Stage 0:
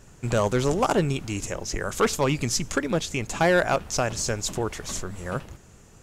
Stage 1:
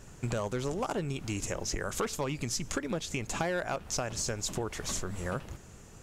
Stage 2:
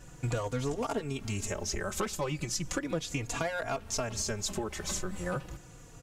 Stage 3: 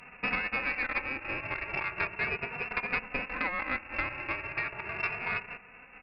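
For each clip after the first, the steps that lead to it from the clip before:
compression, threshold -30 dBFS, peak gain reduction 12.5 dB
endless flanger 3.6 ms -0.36 Hz; trim +3 dB
formants flattened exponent 0.3; frequency inversion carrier 2.7 kHz; Chebyshev shaper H 2 -15 dB, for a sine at -18 dBFS; trim +2.5 dB

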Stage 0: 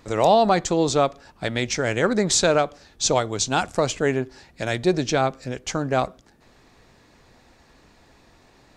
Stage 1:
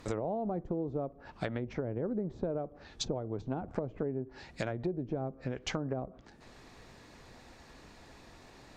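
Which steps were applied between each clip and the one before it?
low-pass that closes with the level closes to 470 Hz, closed at -19.5 dBFS; compression 6:1, threshold -32 dBFS, peak gain reduction 15 dB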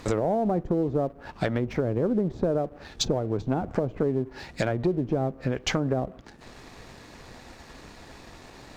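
waveshaping leveller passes 1; trim +6 dB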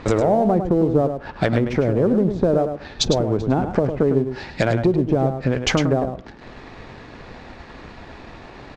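level-controlled noise filter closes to 2.7 kHz, open at -21.5 dBFS; delay 104 ms -8 dB; trim +7 dB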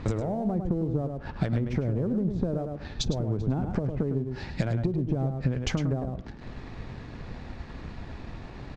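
compression 4:1, threshold -24 dBFS, peak gain reduction 10 dB; tone controls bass +11 dB, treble +2 dB; trim -7 dB

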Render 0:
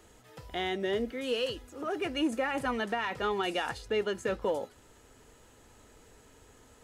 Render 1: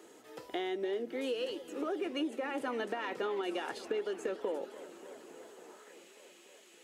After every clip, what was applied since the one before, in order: high-pass sweep 330 Hz -> 2.5 kHz, 5.48–5.98 s; compression, threshold -33 dBFS, peak gain reduction 14.5 dB; modulated delay 286 ms, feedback 79%, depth 213 cents, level -16.5 dB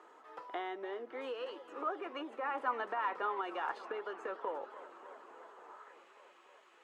band-pass filter 1.1 kHz, Q 2.9; trim +9 dB

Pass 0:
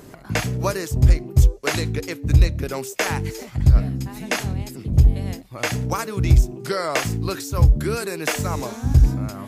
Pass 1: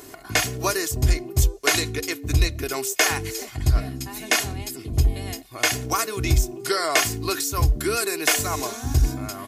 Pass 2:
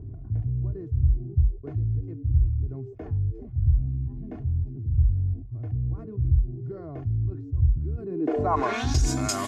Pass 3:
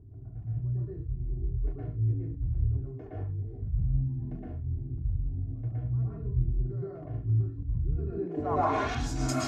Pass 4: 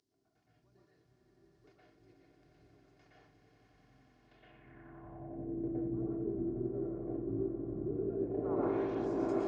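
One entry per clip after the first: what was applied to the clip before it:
tilt EQ +2 dB/octave; comb 2.8 ms, depth 63%
low-pass sweep 100 Hz -> 7.3 kHz, 7.98–9.02 s; level flattener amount 50%; trim -7 dB
slow attack 100 ms; random-step tremolo 3.7 Hz; reverberation, pre-delay 111 ms, DRR -7 dB; trim -7 dB
spectral peaks clipped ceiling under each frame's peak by 17 dB; echo with a slow build-up 90 ms, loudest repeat 8, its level -11 dB; band-pass sweep 5 kHz -> 370 Hz, 4.24–5.60 s

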